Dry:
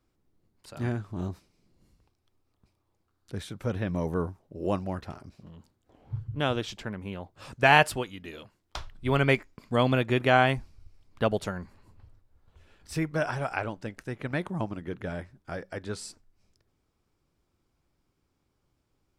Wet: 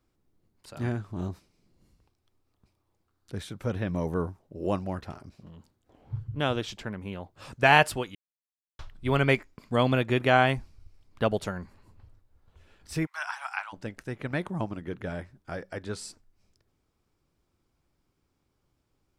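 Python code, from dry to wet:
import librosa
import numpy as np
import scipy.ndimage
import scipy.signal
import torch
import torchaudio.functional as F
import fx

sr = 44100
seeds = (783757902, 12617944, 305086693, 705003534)

y = fx.steep_highpass(x, sr, hz=840.0, slope=48, at=(13.05, 13.72), fade=0.02)
y = fx.edit(y, sr, fx.silence(start_s=8.15, length_s=0.64), tone=tone)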